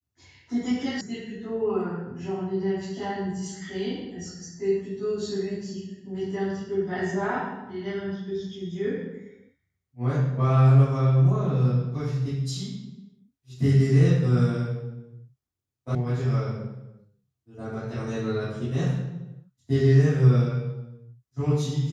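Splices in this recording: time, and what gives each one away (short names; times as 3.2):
1.01 sound cut off
15.95 sound cut off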